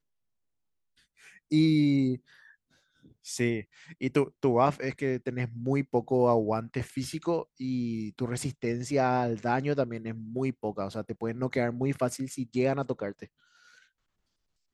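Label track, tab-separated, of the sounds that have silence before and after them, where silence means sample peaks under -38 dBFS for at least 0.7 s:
1.510000	2.170000	sound
3.270000	13.240000	sound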